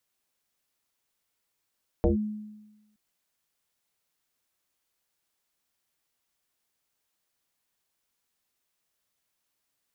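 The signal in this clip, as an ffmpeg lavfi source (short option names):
-f lavfi -i "aevalsrc='0.141*pow(10,-3*t/1.09)*sin(2*PI*212*t+3.3*clip(1-t/0.13,0,1)*sin(2*PI*0.62*212*t))':d=0.92:s=44100"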